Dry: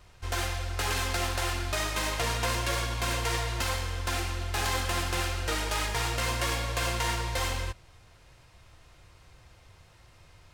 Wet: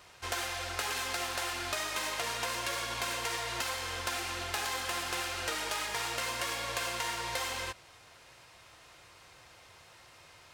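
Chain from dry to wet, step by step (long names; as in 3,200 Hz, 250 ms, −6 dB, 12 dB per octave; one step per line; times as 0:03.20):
high-pass filter 520 Hz 6 dB per octave
downward compressor, threshold −37 dBFS, peak gain reduction 9.5 dB
level +5 dB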